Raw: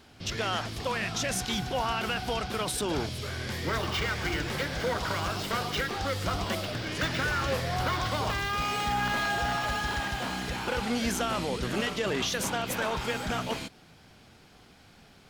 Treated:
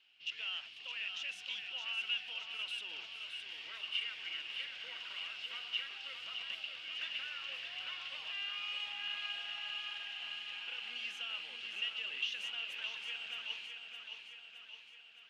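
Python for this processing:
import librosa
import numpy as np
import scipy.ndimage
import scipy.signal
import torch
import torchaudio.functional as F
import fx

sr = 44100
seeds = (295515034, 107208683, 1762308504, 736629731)

y = fx.bandpass_q(x, sr, hz=2800.0, q=10.0)
y = fx.echo_feedback(y, sr, ms=616, feedback_pct=58, wet_db=-6.5)
y = F.gain(torch.from_numpy(y), 2.0).numpy()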